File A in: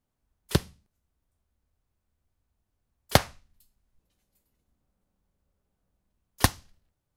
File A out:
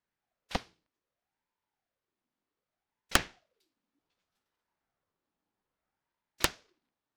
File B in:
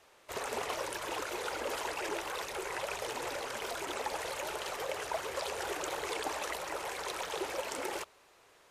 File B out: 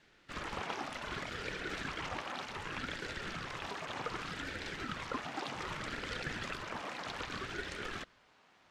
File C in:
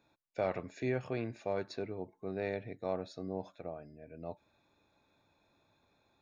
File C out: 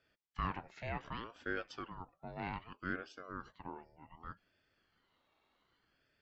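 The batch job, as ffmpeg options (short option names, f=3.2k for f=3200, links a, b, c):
-filter_complex "[0:a]acrossover=split=400 5700:gain=0.158 1 0.0891[a][b][c];[a][b][c]amix=inputs=3:normalize=0,aeval=exprs='(mod(1.88*val(0)+1,2)-1)/1.88':c=same,aeval=exprs='val(0)*sin(2*PI*600*n/s+600*0.6/0.65*sin(2*PI*0.65*n/s))':c=same,volume=1dB"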